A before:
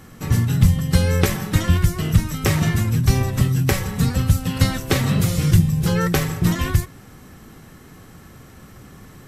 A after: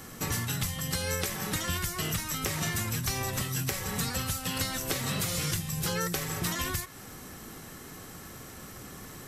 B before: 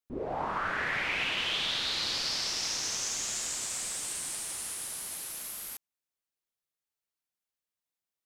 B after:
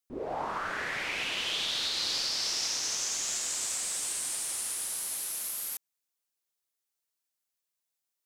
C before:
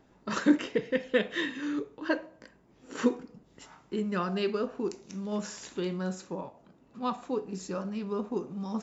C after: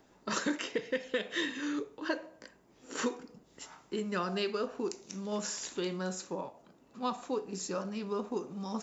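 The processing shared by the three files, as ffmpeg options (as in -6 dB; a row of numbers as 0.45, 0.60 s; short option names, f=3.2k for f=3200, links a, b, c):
-filter_complex "[0:a]bass=f=250:g=-6,treble=f=4k:g=6,acrossover=split=650|4300[a][b][c];[a]acompressor=threshold=-32dB:ratio=4[d];[b]acompressor=threshold=-33dB:ratio=4[e];[c]acompressor=threshold=-32dB:ratio=4[f];[d][e][f]amix=inputs=3:normalize=0,asplit=2[g][h];[h]alimiter=limit=-21.5dB:level=0:latency=1:release=256,volume=2.5dB[i];[g][i]amix=inputs=2:normalize=0,volume=-7dB"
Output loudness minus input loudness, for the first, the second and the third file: -11.5, +1.0, -4.0 LU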